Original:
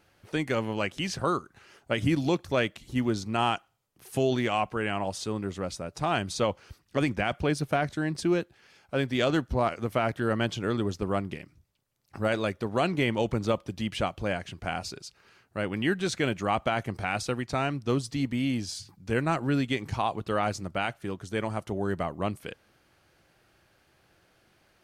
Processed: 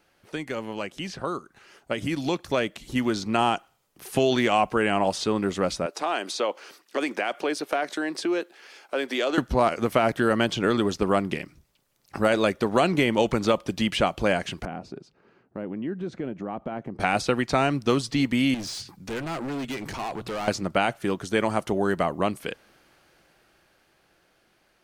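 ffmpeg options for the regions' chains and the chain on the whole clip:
ffmpeg -i in.wav -filter_complex "[0:a]asettb=1/sr,asplit=3[link_01][link_02][link_03];[link_01]atrim=end=5.864[link_04];[link_02]atrim=start=5.86:end=9.38,asetpts=PTS-STARTPTS,afade=type=in:duration=0.004:curve=qsin,afade=type=out:start_time=3.516:duration=0.004:curve=qsin,highpass=frequency=300:width=0.5412,highpass=frequency=300:width=1.3066,acompressor=threshold=-37dB:ratio=2:attack=3.2:release=140:knee=1:detection=peak[link_05];[link_03]atrim=start=9.376[link_06];[link_04][link_05]acrossfade=duration=0.004:curve1=hsin:curve2=qsin[link_07];[link_07][link_06]acrossfade=duration=0.004:curve1=qsin:curve2=hsin,asettb=1/sr,asplit=3[link_08][link_09][link_10];[link_08]atrim=end=14.654[link_11];[link_09]atrim=start=14.65:end=17,asetpts=PTS-STARTPTS,afade=type=in:duration=0.004:curve=qsin,afade=type=out:start_time=2.346:duration=0.004:curve=qsin,bandpass=frequency=230:width_type=q:width=0.77,acompressor=threshold=-39dB:ratio=3:attack=3.2:release=140:knee=1:detection=peak[link_12];[link_10]atrim=start=16.996[link_13];[link_11][link_12]acrossfade=duration=0.004:curve1=hsin:curve2=qsin[link_14];[link_14][link_13]acrossfade=duration=0.004:curve1=qsin:curve2=hsin,asettb=1/sr,asplit=3[link_15][link_16][link_17];[link_15]atrim=end=18.544[link_18];[link_16]atrim=start=18.54:end=20.48,asetpts=PTS-STARTPTS,afade=type=in:duration=0.004:curve=qsin,afade=type=out:start_time=1.936:duration=0.004:curve=qsin,bandreject=frequency=60:width_type=h:width=6,bandreject=frequency=120:width_type=h:width=6,acompressor=threshold=-35dB:ratio=2:attack=3.2:release=140:knee=1:detection=peak,asoftclip=type=hard:threshold=-37.5dB[link_19];[link_17]atrim=start=20.476[link_20];[link_18][link_19]acrossfade=duration=0.004:curve1=hsin:curve2=qsin[link_21];[link_21][link_20]acrossfade=duration=0.004:curve1=qsin:curve2=hsin,acrossover=split=880|4800[link_22][link_23][link_24];[link_22]acompressor=threshold=-28dB:ratio=4[link_25];[link_23]acompressor=threshold=-35dB:ratio=4[link_26];[link_24]acompressor=threshold=-50dB:ratio=4[link_27];[link_25][link_26][link_27]amix=inputs=3:normalize=0,equalizer=frequency=93:width=1.3:gain=-10.5,dynaudnorm=framelen=470:gausssize=11:maxgain=10dB" out.wav

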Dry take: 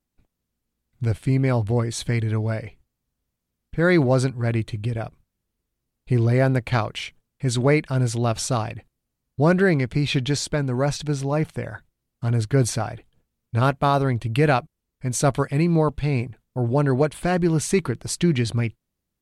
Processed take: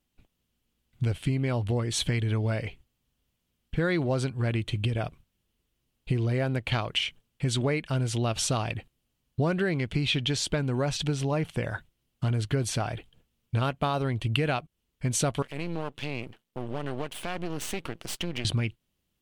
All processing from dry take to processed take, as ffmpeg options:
ffmpeg -i in.wav -filter_complex "[0:a]asettb=1/sr,asplit=3[link_01][link_02][link_03];[link_01]atrim=end=15.424[link_04];[link_02]atrim=start=15.42:end=18.45,asetpts=PTS-STARTPTS,afade=type=in:duration=0.004:curve=qsin,afade=type=out:start_time=3.026:duration=0.004:curve=qsin,highpass=190,acompressor=threshold=-33dB:ratio=2.5:attack=3.2:release=140:knee=1:detection=peak,aeval=exprs='max(val(0),0)':channel_layout=same[link_05];[link_03]atrim=start=18.446[link_06];[link_04][link_05]acrossfade=duration=0.004:curve1=hsin:curve2=qsin[link_07];[link_07][link_06]acrossfade=duration=0.004:curve1=qsin:curve2=hsin,equalizer=frequency=3000:width_type=o:width=0.54:gain=10,acompressor=threshold=-26dB:ratio=6,volume=2dB" out.wav

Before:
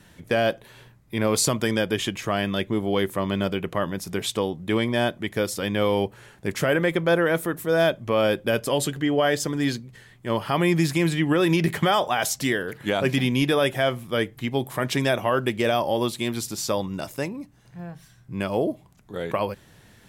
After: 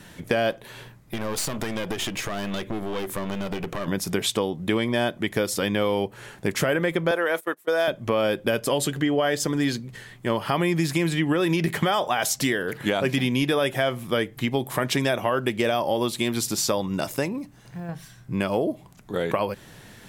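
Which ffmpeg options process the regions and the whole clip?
ffmpeg -i in.wav -filter_complex "[0:a]asettb=1/sr,asplit=3[link_01][link_02][link_03];[link_01]atrim=end=0.514[link_04];[link_02]atrim=start=0.51:end=3.88,asetpts=PTS-STARTPTS,afade=type=in:duration=0.004:curve=qsin,afade=type=out:start_time=3.366:duration=0.004:curve=qsin,acompressor=threshold=-27dB:ratio=6:attack=3.2:release=140:knee=1:detection=peak,aeval=exprs='clip(val(0),-1,0.0112)':channel_layout=same[link_05];[link_03]atrim=start=3.876[link_06];[link_04][link_05]acrossfade=duration=0.004:curve1=hsin:curve2=qsin[link_07];[link_07][link_06]acrossfade=duration=0.004:curve1=qsin:curve2=hsin,asettb=1/sr,asplit=3[link_08][link_09][link_10];[link_08]atrim=end=7.114[link_11];[link_09]atrim=start=7.11:end=7.88,asetpts=PTS-STARTPTS,afade=type=in:duration=0.004:curve=qsin,afade=type=out:start_time=0.766:duration=0.004:curve=qsin,highpass=450,agate=range=-25dB:threshold=-33dB:ratio=16:release=100:detection=peak[link_12];[link_10]atrim=start=7.876[link_13];[link_11][link_12]acrossfade=duration=0.004:curve1=hsin:curve2=qsin[link_14];[link_14][link_13]acrossfade=duration=0.004:curve1=qsin:curve2=hsin,asettb=1/sr,asplit=3[link_15][link_16][link_17];[link_15]atrim=end=17.384[link_18];[link_16]atrim=start=17.38:end=17.89,asetpts=PTS-STARTPTS,afade=type=in:duration=0.004:curve=qsin,afade=type=out:start_time=0.506:duration=0.004:curve=qsin,acompressor=threshold=-36dB:ratio=5:attack=3.2:release=140:knee=1:detection=peak,acrusher=bits=9:mode=log:mix=0:aa=0.000001[link_19];[link_17]atrim=start=17.886[link_20];[link_18][link_19]acrossfade=duration=0.004:curve1=hsin:curve2=qsin[link_21];[link_21][link_20]acrossfade=duration=0.004:curve1=qsin:curve2=hsin,equalizer=frequency=67:width=1.1:gain=-6,acompressor=threshold=-29dB:ratio=3,volume=7dB" out.wav

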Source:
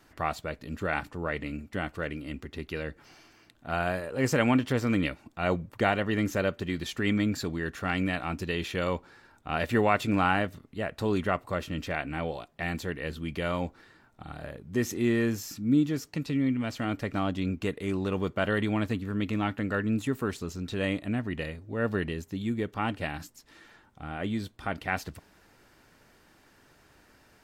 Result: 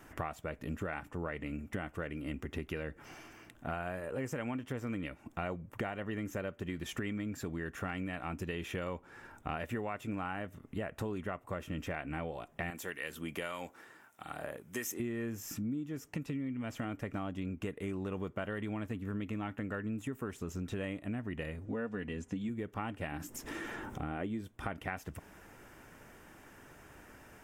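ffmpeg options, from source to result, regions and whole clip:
ffmpeg -i in.wav -filter_complex "[0:a]asettb=1/sr,asplit=3[link_01][link_02][link_03];[link_01]atrim=end=12.704[link_04];[link_02]atrim=start=12.7:end=15,asetpts=PTS-STARTPTS,afade=type=in:duration=0.004:curve=qsin,afade=type=out:start_time=2.296:duration=0.004:curve=qsin,highpass=frequency=550:poles=1,aemphasis=mode=production:type=cd,acrossover=split=1300[link_05][link_06];[link_05]aeval=exprs='val(0)*(1-0.5/2+0.5/2*cos(2*PI*1.7*n/s))':channel_layout=same[link_07];[link_06]aeval=exprs='val(0)*(1-0.5/2-0.5/2*cos(2*PI*1.7*n/s))':channel_layout=same[link_08];[link_07][link_08]amix=inputs=2:normalize=0[link_09];[link_03]atrim=start=14.996[link_10];[link_04][link_09]acrossfade=duration=0.004:curve1=hsin:curve2=qsin[link_11];[link_11][link_10]acrossfade=duration=0.004:curve1=qsin:curve2=hsin,asettb=1/sr,asplit=3[link_12][link_13][link_14];[link_12]atrim=end=21.654[link_15];[link_13]atrim=start=21.65:end=22.49,asetpts=PTS-STARTPTS,afade=type=in:duration=0.004:curve=qsin,afade=type=out:start_time=0.836:duration=0.004:curve=qsin,lowpass=frequency=8600:width=0.5412,lowpass=frequency=8600:width=1.3066,aecho=1:1:4.1:0.63,atrim=end_sample=37044[link_16];[link_14]atrim=start=22.486[link_17];[link_15][link_16]acrossfade=duration=0.004:curve1=hsin:curve2=qsin[link_18];[link_18][link_17]acrossfade=duration=0.004:curve1=qsin:curve2=hsin,asettb=1/sr,asplit=3[link_19][link_20][link_21];[link_19]atrim=end=23.124[link_22];[link_20]atrim=start=23.12:end=24.41,asetpts=PTS-STARTPTS,afade=type=in:duration=0.004:curve=qsin,afade=type=out:start_time=1.286:duration=0.004:curve=qsin,acompressor=mode=upward:threshold=-37dB:ratio=2.5:attack=3.2:release=140:knee=2.83:detection=peak,equalizer=frequency=330:width_type=o:width=1.2:gain=6.5[link_23];[link_21]atrim=start=24.406[link_24];[link_22][link_23]acrossfade=duration=0.004:curve1=hsin:curve2=qsin[link_25];[link_25][link_24]acrossfade=duration=0.004:curve1=qsin:curve2=hsin,equalizer=frequency=4300:width_type=o:width=0.51:gain=-14.5,acompressor=threshold=-40dB:ratio=10,volume=5dB" out.wav

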